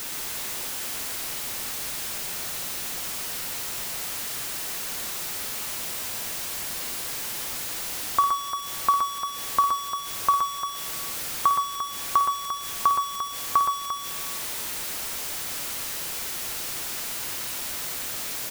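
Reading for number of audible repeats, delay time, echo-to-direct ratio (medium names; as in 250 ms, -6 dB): 3, 53 ms, -3.0 dB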